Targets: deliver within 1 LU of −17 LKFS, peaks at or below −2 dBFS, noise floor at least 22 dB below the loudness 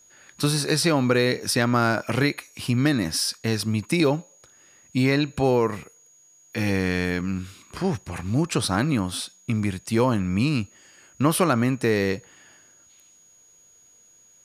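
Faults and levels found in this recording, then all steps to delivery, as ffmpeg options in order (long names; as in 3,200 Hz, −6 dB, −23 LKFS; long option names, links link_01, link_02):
interfering tone 6,700 Hz; level of the tone −53 dBFS; integrated loudness −23.5 LKFS; sample peak −6.5 dBFS; target loudness −17.0 LKFS
→ -af "bandreject=frequency=6700:width=30"
-af "volume=6.5dB,alimiter=limit=-2dB:level=0:latency=1"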